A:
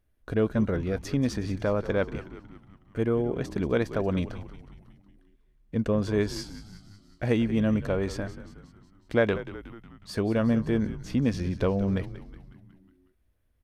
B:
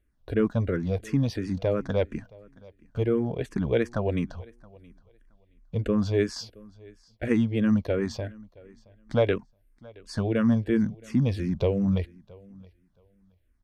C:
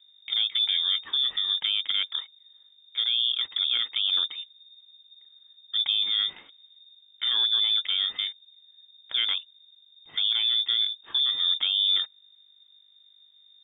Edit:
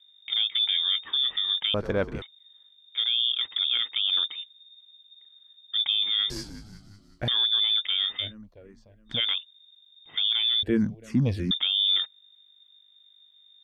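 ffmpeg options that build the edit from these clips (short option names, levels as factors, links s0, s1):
-filter_complex "[0:a]asplit=2[s0][s1];[1:a]asplit=2[s2][s3];[2:a]asplit=5[s4][s5][s6][s7][s8];[s4]atrim=end=1.742[s9];[s0]atrim=start=1.738:end=2.222[s10];[s5]atrim=start=2.218:end=6.302[s11];[s1]atrim=start=6.298:end=7.282[s12];[s6]atrim=start=7.278:end=8.35[s13];[s2]atrim=start=8.19:end=9.21[s14];[s7]atrim=start=9.05:end=10.632[s15];[s3]atrim=start=10.628:end=11.512[s16];[s8]atrim=start=11.508[s17];[s9][s10]acrossfade=d=0.004:c1=hsin:c2=hsin[s18];[s18][s11]acrossfade=d=0.004:c1=hsin:c2=hsin[s19];[s19][s12]acrossfade=d=0.004:c1=hsin:c2=hsin[s20];[s20][s13]acrossfade=d=0.004:c1=hsin:c2=hsin[s21];[s21][s14]acrossfade=d=0.16:c1=tri:c2=tri[s22];[s22][s15]acrossfade=d=0.16:c1=tri:c2=tri[s23];[s23][s16]acrossfade=d=0.004:c1=hsin:c2=hsin[s24];[s24][s17]acrossfade=d=0.004:c1=hsin:c2=hsin"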